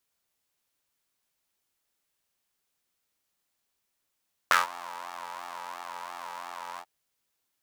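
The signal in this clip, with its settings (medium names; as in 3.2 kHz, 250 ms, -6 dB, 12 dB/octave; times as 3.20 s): synth patch with pulse-width modulation F2, detune 27 cents, filter highpass, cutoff 780 Hz, Q 4.2, filter envelope 1 oct, filter decay 0.14 s, filter sustain 30%, attack 1.4 ms, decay 0.15 s, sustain -22.5 dB, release 0.06 s, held 2.28 s, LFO 2.9 Hz, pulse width 21%, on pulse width 4%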